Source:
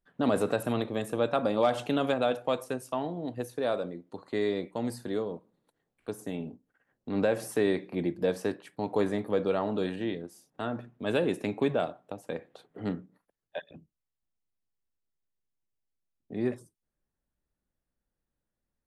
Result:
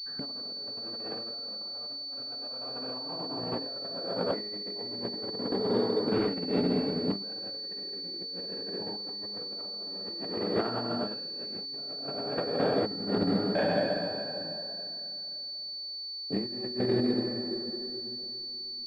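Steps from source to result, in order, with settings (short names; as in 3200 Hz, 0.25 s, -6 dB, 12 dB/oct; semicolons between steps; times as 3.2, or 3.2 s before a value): block floating point 5-bit; bell 75 Hz -9 dB 1.5 oct; plate-style reverb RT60 3.1 s, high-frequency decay 0.65×, DRR -8.5 dB; negative-ratio compressor -32 dBFS, ratio -0.5; pulse-width modulation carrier 4500 Hz; gain -1.5 dB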